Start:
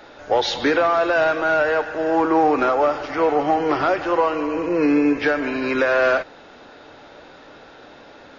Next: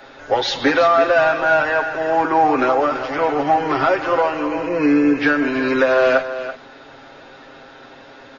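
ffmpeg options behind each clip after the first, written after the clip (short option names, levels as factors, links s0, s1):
-filter_complex "[0:a]acrossover=split=440|2300[s0][s1][s2];[s1]crystalizer=i=3.5:c=0[s3];[s0][s3][s2]amix=inputs=3:normalize=0,aecho=1:1:7.5:0.62,aecho=1:1:333:0.266"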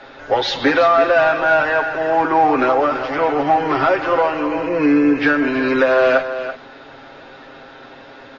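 -filter_complex "[0:a]asplit=2[s0][s1];[s1]asoftclip=type=tanh:threshold=0.106,volume=0.282[s2];[s0][s2]amix=inputs=2:normalize=0,lowpass=5100"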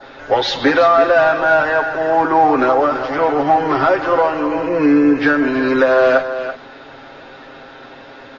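-af "adynamicequalizer=threshold=0.0141:dfrequency=2500:dqfactor=2:tfrequency=2500:tqfactor=2:attack=5:release=100:ratio=0.375:range=3:mode=cutabove:tftype=bell,volume=1.26"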